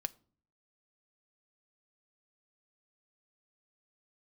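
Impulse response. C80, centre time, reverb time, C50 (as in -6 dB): 28.0 dB, 2 ms, no single decay rate, 24.0 dB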